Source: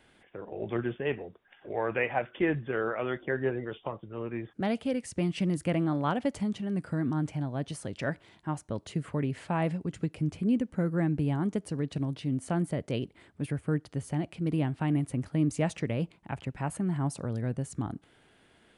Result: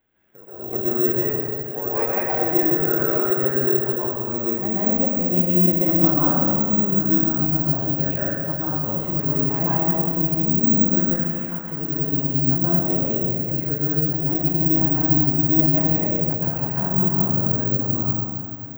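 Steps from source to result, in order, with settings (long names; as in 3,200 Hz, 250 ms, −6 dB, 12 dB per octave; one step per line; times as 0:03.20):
0:10.94–0:11.70: high-pass filter 1,400 Hz 12 dB per octave
dynamic equaliser 3,400 Hz, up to −7 dB, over −52 dBFS, Q 0.8
automatic gain control gain up to 12 dB
soft clipping −9.5 dBFS, distortion −20 dB
high-frequency loss of the air 260 metres
convolution reverb RT60 2.7 s, pre-delay 113 ms, DRR −9 dB
bad sample-rate conversion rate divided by 2×, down none, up zero stuff
level −12 dB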